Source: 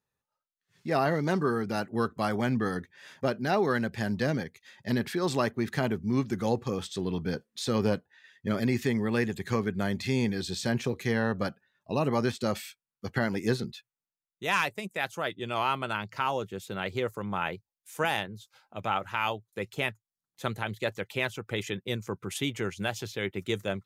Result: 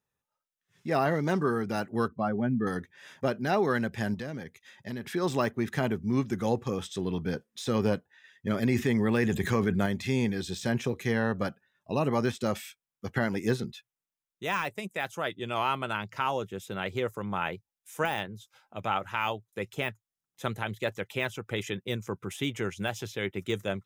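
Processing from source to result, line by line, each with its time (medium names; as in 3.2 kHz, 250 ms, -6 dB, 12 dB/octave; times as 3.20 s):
2.08–2.67 s: spectral contrast enhancement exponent 1.7
4.14–5.14 s: compression 2.5:1, threshold -36 dBFS
8.63–9.86 s: level flattener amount 70%
whole clip: de-esser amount 80%; band-stop 4.4 kHz, Q 6.7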